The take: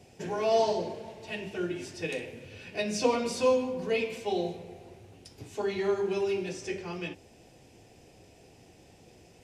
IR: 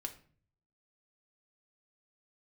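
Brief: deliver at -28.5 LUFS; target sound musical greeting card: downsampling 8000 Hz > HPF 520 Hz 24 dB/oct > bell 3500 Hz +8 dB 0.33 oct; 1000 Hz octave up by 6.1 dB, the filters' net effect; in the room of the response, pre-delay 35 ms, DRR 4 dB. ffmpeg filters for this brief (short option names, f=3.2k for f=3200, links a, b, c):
-filter_complex "[0:a]equalizer=f=1k:t=o:g=8,asplit=2[a][b];[1:a]atrim=start_sample=2205,adelay=35[c];[b][c]afir=irnorm=-1:irlink=0,volume=-2dB[d];[a][d]amix=inputs=2:normalize=0,aresample=8000,aresample=44100,highpass=f=520:w=0.5412,highpass=f=520:w=1.3066,equalizer=f=3.5k:t=o:w=0.33:g=8,volume=1dB"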